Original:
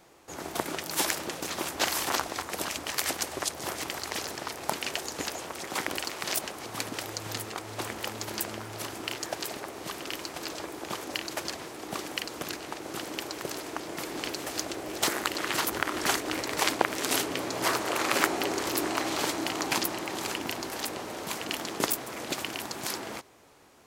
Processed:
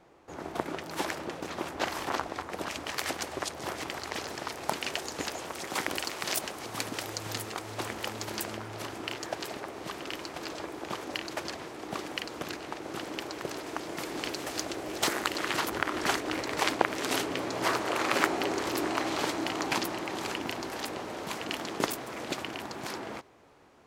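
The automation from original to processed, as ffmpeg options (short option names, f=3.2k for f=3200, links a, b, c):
-af "asetnsamples=n=441:p=0,asendcmd='2.67 lowpass f 3400;4.31 lowpass f 6100;5.45 lowpass f 12000;7.72 lowpass f 7200;8.57 lowpass f 3600;13.67 lowpass f 7100;15.53 lowpass f 3900;22.37 lowpass f 2300',lowpass=f=1.6k:p=1"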